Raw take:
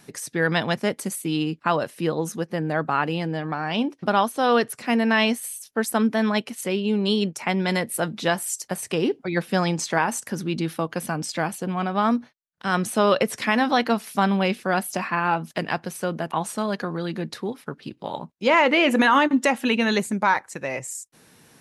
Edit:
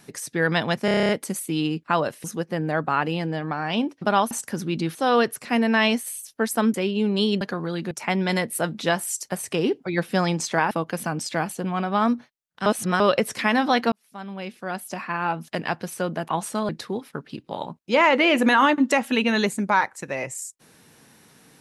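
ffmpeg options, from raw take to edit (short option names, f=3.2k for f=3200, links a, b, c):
-filter_complex "[0:a]asplit=20[a][b][c][d][e][f][g][h][i][j][k][l][m][n][o][p][q][r][s][t];[a]atrim=end=0.882[u];[b]atrim=start=0.848:end=0.882[v];[c]atrim=start=0.848:end=0.882[w];[d]atrim=start=0.848:end=0.882[x];[e]atrim=start=0.848:end=0.882[y];[f]atrim=start=0.848:end=0.882[z];[g]atrim=start=0.848:end=0.882[aa];[h]atrim=start=0.848:end=0.882[ab];[i]atrim=start=0.848:end=2.002[ac];[j]atrim=start=2.248:end=4.322[ad];[k]atrim=start=10.098:end=10.742[ae];[l]atrim=start=4.318:end=6.112[af];[m]atrim=start=6.628:end=7.302[ag];[n]atrim=start=16.718:end=17.222[ah];[o]atrim=start=7.298:end=10.102[ai];[p]atrim=start=10.738:end=12.692[aj];[q]atrim=start=12.688:end=13.032,asetpts=PTS-STARTPTS,areverse[ak];[r]atrim=start=13.028:end=13.95,asetpts=PTS-STARTPTS,afade=t=out:st=0.918:d=0.004:c=hsin[al];[s]atrim=start=13.95:end=16.722,asetpts=PTS-STARTPTS,afade=t=in:d=1.88[am];[t]atrim=start=17.218[an];[u][v]acrossfade=d=0.004:c1=hsin:c2=hsin[ao];[ao][w]acrossfade=d=0.004:c1=hsin:c2=hsin[ap];[ap][x]acrossfade=d=0.004:c1=hsin:c2=hsin[aq];[aq][y]acrossfade=d=0.004:c1=hsin:c2=hsin[ar];[ar][z]acrossfade=d=0.004:c1=hsin:c2=hsin[as];[as][aa]acrossfade=d=0.004:c1=hsin:c2=hsin[at];[at][ab]acrossfade=d=0.004:c1=hsin:c2=hsin[au];[au][ac]acrossfade=d=0.004:c1=hsin:c2=hsin[av];[av][ad]acrossfade=d=0.004:c1=hsin:c2=hsin[aw];[aw][ae]acrossfade=d=0.004:c1=hsin:c2=hsin[ax];[ax][af]acrossfade=d=0.004:c1=hsin:c2=hsin[ay];[ay][ag]acrossfade=d=0.004:c1=hsin:c2=hsin[az];[az][ah]acrossfade=d=0.004:c1=hsin:c2=hsin[ba];[ba][ai]acrossfade=d=0.004:c1=hsin:c2=hsin[bb];[bb][aj]acrossfade=d=0.004:c1=hsin:c2=hsin[bc];[bc][ak]acrossfade=d=0.004:c1=hsin:c2=hsin[bd];[al][am]concat=n=2:v=0:a=1[be];[bd][be]acrossfade=d=0.004:c1=hsin:c2=hsin[bf];[bf][an]acrossfade=d=0.004:c1=hsin:c2=hsin"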